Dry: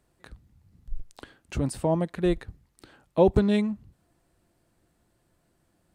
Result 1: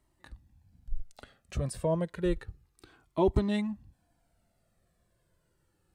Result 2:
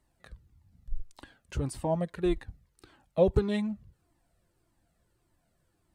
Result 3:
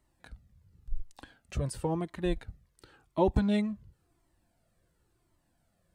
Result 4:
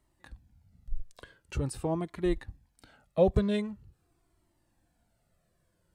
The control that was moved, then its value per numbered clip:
Shepard-style flanger, rate: 0.3 Hz, 1.7 Hz, 0.94 Hz, 0.45 Hz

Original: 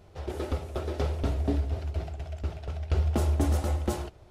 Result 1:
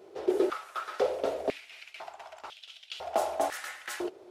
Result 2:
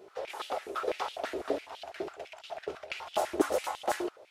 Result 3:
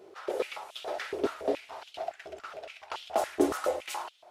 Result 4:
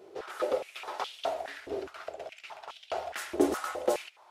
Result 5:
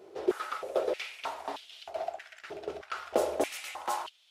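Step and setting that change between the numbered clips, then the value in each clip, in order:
step-sequenced high-pass, rate: 2 Hz, 12 Hz, 7.1 Hz, 4.8 Hz, 3.2 Hz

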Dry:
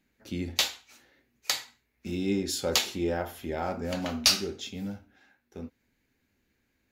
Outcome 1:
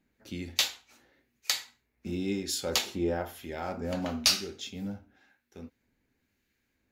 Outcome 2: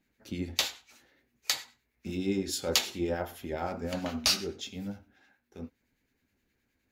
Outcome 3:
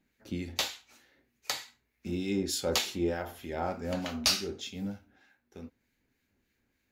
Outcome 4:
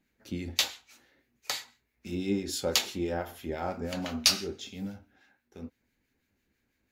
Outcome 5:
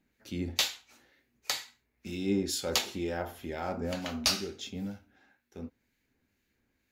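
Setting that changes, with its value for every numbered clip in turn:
harmonic tremolo, rate: 1 Hz, 9.6 Hz, 3.3 Hz, 6 Hz, 2.1 Hz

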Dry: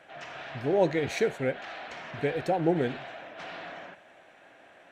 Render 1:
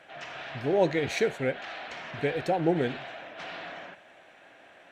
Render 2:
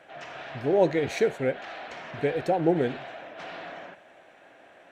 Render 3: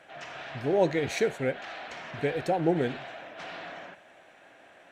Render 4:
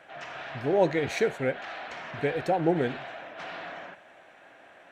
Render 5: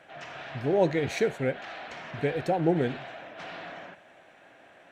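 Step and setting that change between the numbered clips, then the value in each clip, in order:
peaking EQ, frequency: 3.3 kHz, 460 Hz, 8.9 kHz, 1.2 kHz, 130 Hz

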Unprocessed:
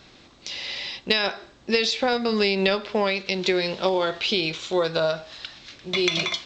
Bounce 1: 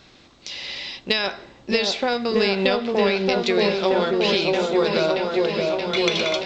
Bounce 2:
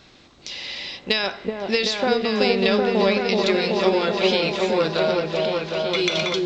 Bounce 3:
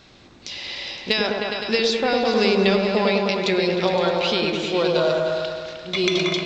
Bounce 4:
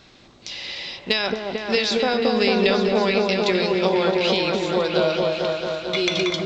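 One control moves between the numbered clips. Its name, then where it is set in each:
delay with an opening low-pass, time: 626 ms, 379 ms, 103 ms, 223 ms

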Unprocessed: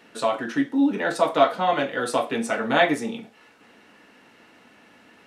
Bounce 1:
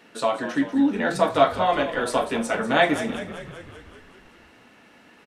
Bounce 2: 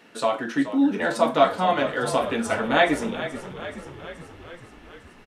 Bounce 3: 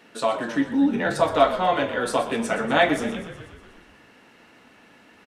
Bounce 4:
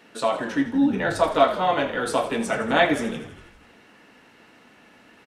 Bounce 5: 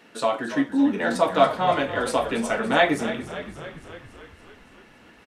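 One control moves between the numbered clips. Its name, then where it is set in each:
frequency-shifting echo, time: 192 ms, 427 ms, 122 ms, 81 ms, 283 ms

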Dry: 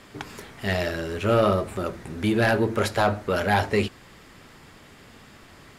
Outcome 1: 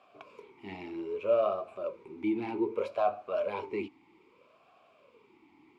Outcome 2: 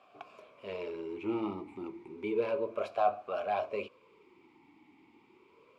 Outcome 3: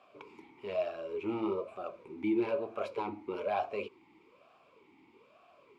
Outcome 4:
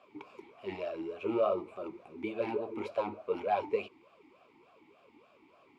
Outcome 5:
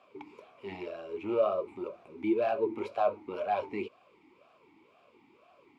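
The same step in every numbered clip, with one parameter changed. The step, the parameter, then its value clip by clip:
talking filter, rate: 0.63 Hz, 0.31 Hz, 1.1 Hz, 3.4 Hz, 2 Hz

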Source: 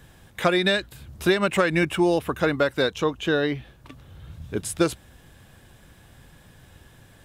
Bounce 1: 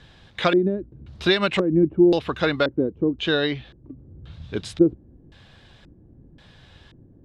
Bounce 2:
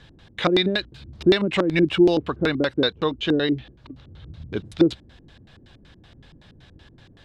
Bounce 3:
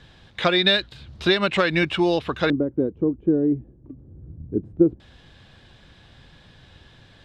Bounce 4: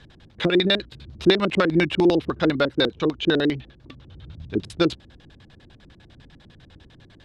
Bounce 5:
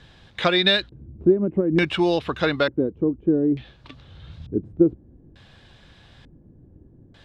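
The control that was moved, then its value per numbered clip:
LFO low-pass, rate: 0.94 Hz, 5.3 Hz, 0.2 Hz, 10 Hz, 0.56 Hz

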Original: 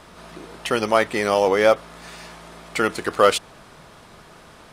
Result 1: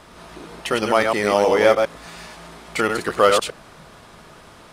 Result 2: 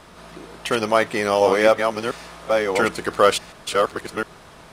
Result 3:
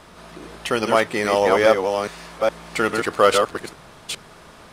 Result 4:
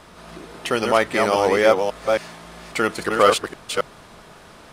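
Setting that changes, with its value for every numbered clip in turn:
chunks repeated in reverse, time: 103 ms, 705 ms, 415 ms, 272 ms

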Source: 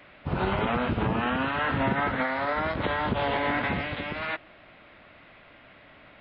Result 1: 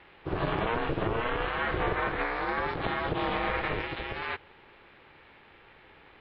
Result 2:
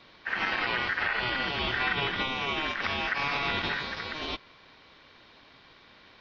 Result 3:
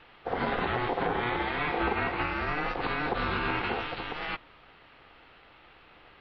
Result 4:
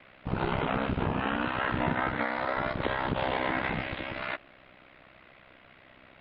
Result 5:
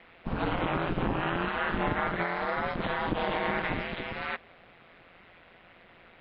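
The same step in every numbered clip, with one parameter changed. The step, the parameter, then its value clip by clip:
ring modulator, frequency: 230 Hz, 1.7 kHz, 610 Hz, 32 Hz, 86 Hz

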